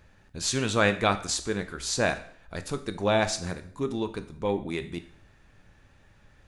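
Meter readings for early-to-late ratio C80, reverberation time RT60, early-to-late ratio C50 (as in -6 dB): 17.0 dB, 0.60 s, 13.5 dB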